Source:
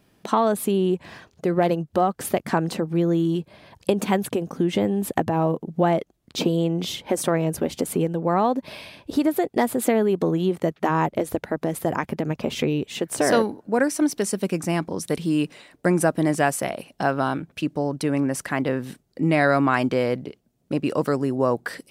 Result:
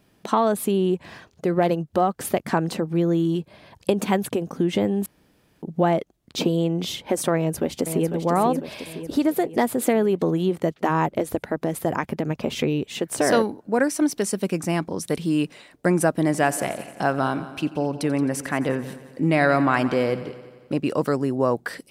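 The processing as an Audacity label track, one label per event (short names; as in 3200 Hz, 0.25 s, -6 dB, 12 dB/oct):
5.060000	5.620000	room tone
7.360000	8.110000	echo throw 0.5 s, feedback 55%, level -7 dB
16.250000	20.740000	multi-head echo 88 ms, heads first and second, feedback 53%, level -18 dB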